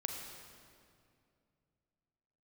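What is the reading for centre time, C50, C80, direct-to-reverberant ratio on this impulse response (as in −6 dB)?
69 ms, 3.5 dB, 4.0 dB, 2.0 dB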